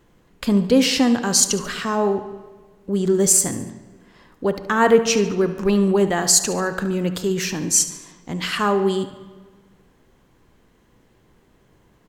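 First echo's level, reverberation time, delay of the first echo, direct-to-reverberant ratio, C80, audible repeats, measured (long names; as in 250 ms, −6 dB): −14.5 dB, 1.5 s, 72 ms, 9.0 dB, 13.0 dB, 3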